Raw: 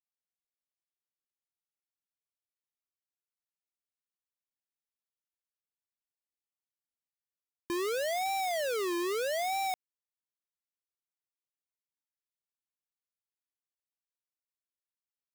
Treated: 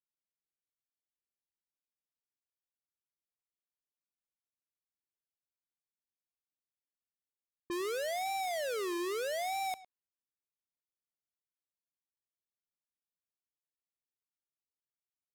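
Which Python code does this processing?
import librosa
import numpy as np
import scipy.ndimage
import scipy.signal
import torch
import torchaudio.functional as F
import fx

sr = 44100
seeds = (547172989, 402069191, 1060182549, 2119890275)

y = x + 10.0 ** (-18.0 / 20.0) * np.pad(x, (int(107 * sr / 1000.0), 0))[:len(x)]
y = fx.env_lowpass(y, sr, base_hz=450.0, full_db=-32.0)
y = F.gain(torch.from_numpy(y), -3.5).numpy()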